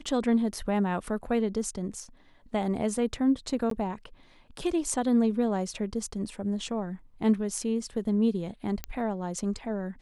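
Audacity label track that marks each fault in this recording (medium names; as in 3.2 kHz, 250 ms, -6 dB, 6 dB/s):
3.700000	3.710000	dropout 13 ms
8.840000	8.840000	pop -16 dBFS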